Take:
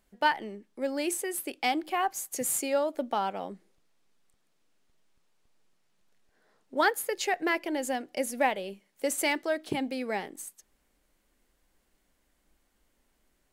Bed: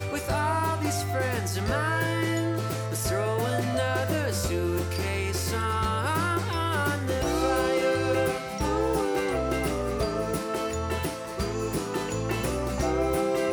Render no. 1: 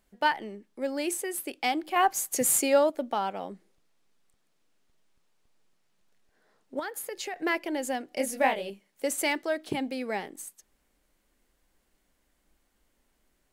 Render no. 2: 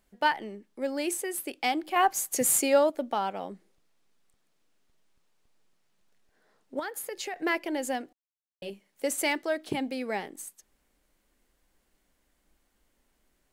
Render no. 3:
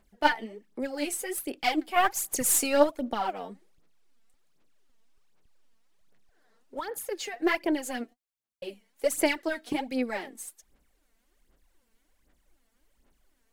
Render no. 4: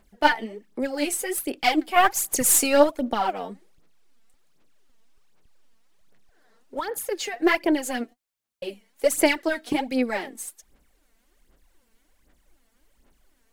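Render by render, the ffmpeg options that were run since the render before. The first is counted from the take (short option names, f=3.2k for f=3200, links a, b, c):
-filter_complex "[0:a]asettb=1/sr,asplit=3[a][b][c];[a]atrim=end=6.794[d];[b]atrim=start=6.79:end=7.36,asetpts=PTS-STARTPTS,afade=t=in:d=0.004:c=qsin,afade=t=out:st=0.566:d=0.004:c=qsin,acompressor=threshold=-32dB:ratio=5:attack=3.2:release=140:knee=1:detection=peak[e];[c]atrim=start=7.356[f];[d][e]acrossfade=d=0.004:c1=hsin:c2=qsin[g];[g][f]acrossfade=d=0.004:c1=qsin:c2=hsin,asettb=1/sr,asplit=3[h][i][j];[h]atrim=end=8.094[k];[i]atrim=start=8.09:end=8.7,asetpts=PTS-STARTPTS,afade=t=in:d=0.004:c=qsin,afade=t=out:st=0.606:d=0.004:c=qsin,asplit=2[l][m];[m]adelay=23,volume=-3.5dB[n];[l][n]amix=inputs=2:normalize=0,atrim=end_sample=26901[o];[j]atrim=start=8.696[p];[k][o]acrossfade=d=0.004:c1=hsin:c2=qsin[q];[q][p]acrossfade=d=0.004:c1=qsin:c2=hsin,asplit=3[r][s][t];[r]atrim=end=1.962[u];[s]atrim=start=1.958:end=2.902,asetpts=PTS-STARTPTS,volume=5.5dB[v];[t]atrim=start=2.898[w];[u][v]acrossfade=d=0.004:c1=hsin:c2=hsin[x];[x][w]acrossfade=d=0.004:c1=hsin:c2=hsin"
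-filter_complex "[0:a]asplit=3[a][b][c];[a]atrim=end=8.13,asetpts=PTS-STARTPTS,afade=t=out:st=8.126:d=0.004:c=hsin[d];[b]atrim=start=8.13:end=8.62,asetpts=PTS-STARTPTS,volume=0[e];[c]atrim=start=8.62,asetpts=PTS-STARTPTS,afade=t=in:d=0.004:c=hsin[f];[d][e][f]concat=n=3:v=0:a=1"
-af "aeval=exprs='0.282*(cos(1*acos(clip(val(0)/0.282,-1,1)))-cos(1*PI/2))+0.0282*(cos(3*acos(clip(val(0)/0.282,-1,1)))-cos(3*PI/2))+0.00398*(cos(6*acos(clip(val(0)/0.282,-1,1)))-cos(6*PI/2))':c=same,aphaser=in_gain=1:out_gain=1:delay=4.5:decay=0.69:speed=1.3:type=sinusoidal"
-af "volume=5.5dB,alimiter=limit=-3dB:level=0:latency=1"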